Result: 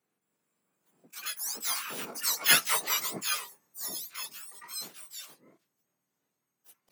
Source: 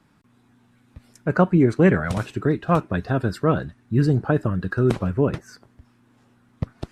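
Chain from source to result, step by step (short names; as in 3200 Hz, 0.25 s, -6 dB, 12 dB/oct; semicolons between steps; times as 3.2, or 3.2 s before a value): spectrum mirrored in octaves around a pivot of 1300 Hz; Doppler pass-by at 2.62, 27 m/s, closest 5 m; harmoniser +4 st -2 dB, +12 st 0 dB; gain +1.5 dB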